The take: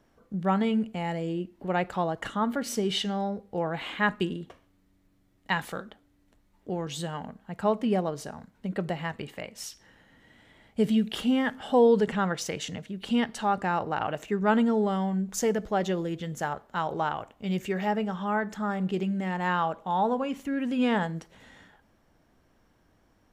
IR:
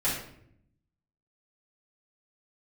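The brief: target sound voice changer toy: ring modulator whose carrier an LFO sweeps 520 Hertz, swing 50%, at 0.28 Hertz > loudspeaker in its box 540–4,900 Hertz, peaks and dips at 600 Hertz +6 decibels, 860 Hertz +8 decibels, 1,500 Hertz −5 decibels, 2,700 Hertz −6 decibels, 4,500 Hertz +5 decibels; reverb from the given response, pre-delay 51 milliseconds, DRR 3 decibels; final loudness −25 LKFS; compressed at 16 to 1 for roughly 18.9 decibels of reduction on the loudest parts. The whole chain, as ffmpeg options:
-filter_complex "[0:a]acompressor=threshold=-35dB:ratio=16,asplit=2[link_01][link_02];[1:a]atrim=start_sample=2205,adelay=51[link_03];[link_02][link_03]afir=irnorm=-1:irlink=0,volume=-12.5dB[link_04];[link_01][link_04]amix=inputs=2:normalize=0,aeval=exprs='val(0)*sin(2*PI*520*n/s+520*0.5/0.28*sin(2*PI*0.28*n/s))':channel_layout=same,highpass=540,equalizer=frequency=600:width_type=q:width=4:gain=6,equalizer=frequency=860:width_type=q:width=4:gain=8,equalizer=frequency=1500:width_type=q:width=4:gain=-5,equalizer=frequency=2700:width_type=q:width=4:gain=-6,equalizer=frequency=4500:width_type=q:width=4:gain=5,lowpass=frequency=4900:width=0.5412,lowpass=frequency=4900:width=1.3066,volume=14dB"

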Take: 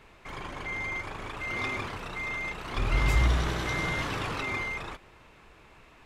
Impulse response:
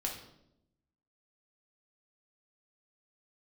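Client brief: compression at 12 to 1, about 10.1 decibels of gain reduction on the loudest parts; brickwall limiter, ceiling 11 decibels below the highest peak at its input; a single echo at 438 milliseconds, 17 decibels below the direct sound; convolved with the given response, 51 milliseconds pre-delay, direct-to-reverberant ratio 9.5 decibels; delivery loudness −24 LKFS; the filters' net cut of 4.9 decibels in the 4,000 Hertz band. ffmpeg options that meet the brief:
-filter_complex "[0:a]equalizer=frequency=4000:width_type=o:gain=-6.5,acompressor=threshold=-29dB:ratio=12,alimiter=level_in=8.5dB:limit=-24dB:level=0:latency=1,volume=-8.5dB,aecho=1:1:438:0.141,asplit=2[link_01][link_02];[1:a]atrim=start_sample=2205,adelay=51[link_03];[link_02][link_03]afir=irnorm=-1:irlink=0,volume=-11.5dB[link_04];[link_01][link_04]amix=inputs=2:normalize=0,volume=15.5dB"

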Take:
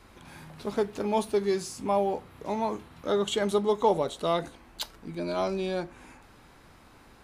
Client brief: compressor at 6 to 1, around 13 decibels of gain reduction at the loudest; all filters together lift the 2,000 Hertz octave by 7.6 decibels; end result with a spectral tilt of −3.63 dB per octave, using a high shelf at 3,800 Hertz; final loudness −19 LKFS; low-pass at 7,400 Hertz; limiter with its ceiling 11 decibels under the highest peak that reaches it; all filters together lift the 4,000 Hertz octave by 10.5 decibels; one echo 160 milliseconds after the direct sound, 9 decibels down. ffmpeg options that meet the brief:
ffmpeg -i in.wav -af "lowpass=7400,equalizer=frequency=2000:width_type=o:gain=6,highshelf=frequency=3800:gain=7,equalizer=frequency=4000:width_type=o:gain=7,acompressor=threshold=-33dB:ratio=6,alimiter=level_in=3.5dB:limit=-24dB:level=0:latency=1,volume=-3.5dB,aecho=1:1:160:0.355,volume=19.5dB" out.wav

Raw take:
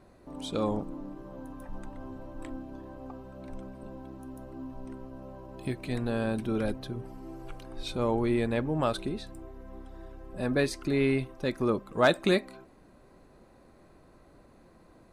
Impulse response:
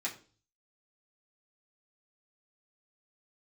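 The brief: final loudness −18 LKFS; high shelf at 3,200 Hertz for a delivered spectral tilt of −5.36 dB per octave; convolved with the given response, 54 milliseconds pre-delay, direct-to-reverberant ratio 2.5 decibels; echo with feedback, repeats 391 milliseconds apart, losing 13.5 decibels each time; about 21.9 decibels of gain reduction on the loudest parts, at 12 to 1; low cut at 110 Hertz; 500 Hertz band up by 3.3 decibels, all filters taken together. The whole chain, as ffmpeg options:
-filter_complex "[0:a]highpass=110,equalizer=frequency=500:width_type=o:gain=4,highshelf=frequency=3200:gain=7.5,acompressor=threshold=-37dB:ratio=12,aecho=1:1:391|782:0.211|0.0444,asplit=2[link_01][link_02];[1:a]atrim=start_sample=2205,adelay=54[link_03];[link_02][link_03]afir=irnorm=-1:irlink=0,volume=-5.5dB[link_04];[link_01][link_04]amix=inputs=2:normalize=0,volume=22.5dB"

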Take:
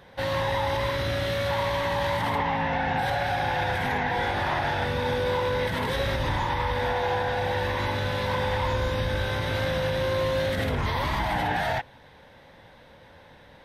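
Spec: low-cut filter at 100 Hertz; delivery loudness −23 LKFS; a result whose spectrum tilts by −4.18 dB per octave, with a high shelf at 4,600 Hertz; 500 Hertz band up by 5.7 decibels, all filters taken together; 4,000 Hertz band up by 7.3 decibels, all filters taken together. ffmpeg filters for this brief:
ffmpeg -i in.wav -af "highpass=100,equalizer=frequency=500:width_type=o:gain=6,equalizer=frequency=4000:width_type=o:gain=5,highshelf=frequency=4600:gain=8" out.wav

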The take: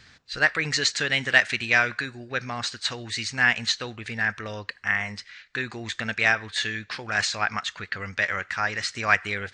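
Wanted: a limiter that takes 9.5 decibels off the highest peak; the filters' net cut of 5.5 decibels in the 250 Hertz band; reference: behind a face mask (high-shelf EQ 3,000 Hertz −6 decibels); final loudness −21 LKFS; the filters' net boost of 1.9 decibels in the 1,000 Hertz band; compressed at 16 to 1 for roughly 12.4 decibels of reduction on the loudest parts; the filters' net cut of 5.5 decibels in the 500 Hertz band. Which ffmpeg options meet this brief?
ffmpeg -i in.wav -af "equalizer=frequency=250:width_type=o:gain=-5,equalizer=frequency=500:width_type=o:gain=-8.5,equalizer=frequency=1000:width_type=o:gain=6.5,acompressor=threshold=-24dB:ratio=16,alimiter=limit=-21.5dB:level=0:latency=1,highshelf=frequency=3000:gain=-6,volume=14dB" out.wav

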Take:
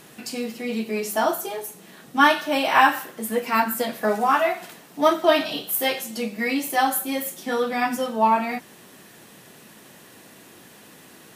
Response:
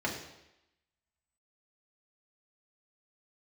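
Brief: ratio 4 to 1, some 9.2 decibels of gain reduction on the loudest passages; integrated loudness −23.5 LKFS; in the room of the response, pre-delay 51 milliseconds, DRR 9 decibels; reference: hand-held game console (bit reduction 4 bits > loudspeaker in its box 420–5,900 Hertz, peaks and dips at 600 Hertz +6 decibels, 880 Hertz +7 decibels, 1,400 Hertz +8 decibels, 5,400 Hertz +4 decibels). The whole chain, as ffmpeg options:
-filter_complex "[0:a]acompressor=threshold=-22dB:ratio=4,asplit=2[link_01][link_02];[1:a]atrim=start_sample=2205,adelay=51[link_03];[link_02][link_03]afir=irnorm=-1:irlink=0,volume=-16.5dB[link_04];[link_01][link_04]amix=inputs=2:normalize=0,acrusher=bits=3:mix=0:aa=0.000001,highpass=420,equalizer=frequency=600:width_type=q:width=4:gain=6,equalizer=frequency=880:width_type=q:width=4:gain=7,equalizer=frequency=1400:width_type=q:width=4:gain=8,equalizer=frequency=5400:width_type=q:width=4:gain=4,lowpass=frequency=5900:width=0.5412,lowpass=frequency=5900:width=1.3066,volume=-1dB"

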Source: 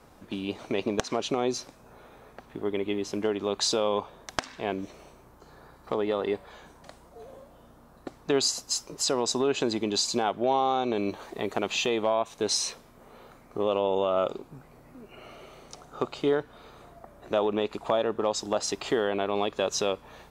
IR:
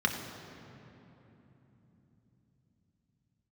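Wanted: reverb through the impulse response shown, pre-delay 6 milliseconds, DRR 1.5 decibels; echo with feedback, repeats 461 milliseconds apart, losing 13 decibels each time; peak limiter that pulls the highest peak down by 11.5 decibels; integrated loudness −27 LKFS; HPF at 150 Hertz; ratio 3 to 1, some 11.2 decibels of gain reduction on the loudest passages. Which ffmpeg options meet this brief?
-filter_complex "[0:a]highpass=150,acompressor=threshold=-36dB:ratio=3,alimiter=level_in=3dB:limit=-24dB:level=0:latency=1,volume=-3dB,aecho=1:1:461|922|1383:0.224|0.0493|0.0108,asplit=2[link_01][link_02];[1:a]atrim=start_sample=2205,adelay=6[link_03];[link_02][link_03]afir=irnorm=-1:irlink=0,volume=-11.5dB[link_04];[link_01][link_04]amix=inputs=2:normalize=0,volume=11dB"

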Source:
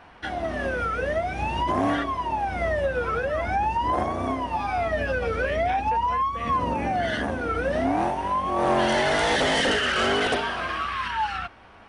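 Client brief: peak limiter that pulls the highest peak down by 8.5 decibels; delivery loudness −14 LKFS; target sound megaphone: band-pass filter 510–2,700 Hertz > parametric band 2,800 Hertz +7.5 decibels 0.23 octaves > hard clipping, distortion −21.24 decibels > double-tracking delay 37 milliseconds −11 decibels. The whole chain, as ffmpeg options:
ffmpeg -i in.wav -filter_complex "[0:a]alimiter=limit=-20dB:level=0:latency=1,highpass=510,lowpass=2700,equalizer=frequency=2800:width_type=o:width=0.23:gain=7.5,asoftclip=type=hard:threshold=-24.5dB,asplit=2[link_01][link_02];[link_02]adelay=37,volume=-11dB[link_03];[link_01][link_03]amix=inputs=2:normalize=0,volume=15.5dB" out.wav

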